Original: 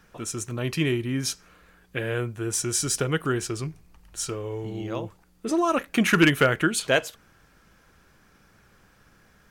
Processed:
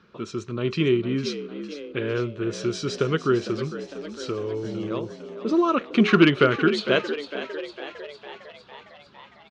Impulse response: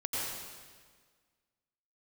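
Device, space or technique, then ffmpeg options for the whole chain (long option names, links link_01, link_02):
frequency-shifting delay pedal into a guitar cabinet: -filter_complex "[0:a]asplit=9[link_01][link_02][link_03][link_04][link_05][link_06][link_07][link_08][link_09];[link_02]adelay=455,afreqshift=71,volume=-12dB[link_10];[link_03]adelay=910,afreqshift=142,volume=-15.7dB[link_11];[link_04]adelay=1365,afreqshift=213,volume=-19.5dB[link_12];[link_05]adelay=1820,afreqshift=284,volume=-23.2dB[link_13];[link_06]adelay=2275,afreqshift=355,volume=-27dB[link_14];[link_07]adelay=2730,afreqshift=426,volume=-30.7dB[link_15];[link_08]adelay=3185,afreqshift=497,volume=-34.5dB[link_16];[link_09]adelay=3640,afreqshift=568,volume=-38.2dB[link_17];[link_01][link_10][link_11][link_12][link_13][link_14][link_15][link_16][link_17]amix=inputs=9:normalize=0,highpass=95,equalizer=frequency=210:width_type=q:width=4:gain=5,equalizer=frequency=390:width_type=q:width=4:gain=8,equalizer=frequency=760:width_type=q:width=4:gain=-9,equalizer=frequency=1200:width_type=q:width=4:gain=5,equalizer=frequency=1800:width_type=q:width=4:gain=-6,equalizer=frequency=4100:width_type=q:width=4:gain=5,lowpass=frequency=4500:width=0.5412,lowpass=frequency=4500:width=1.3066"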